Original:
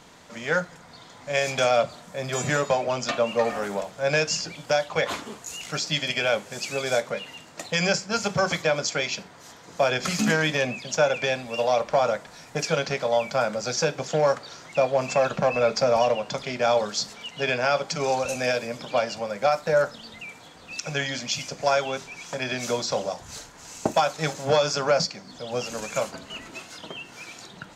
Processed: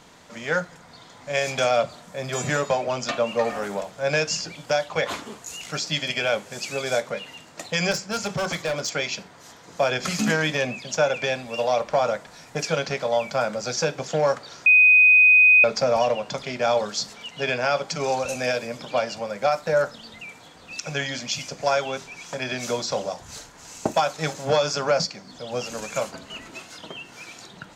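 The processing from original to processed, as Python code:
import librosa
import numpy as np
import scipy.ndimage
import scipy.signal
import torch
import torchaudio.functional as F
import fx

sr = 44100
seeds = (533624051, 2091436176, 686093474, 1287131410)

y = fx.clip_hard(x, sr, threshold_db=-22.0, at=(7.91, 8.93))
y = fx.edit(y, sr, fx.bleep(start_s=14.66, length_s=0.98, hz=2500.0, db=-10.5), tone=tone)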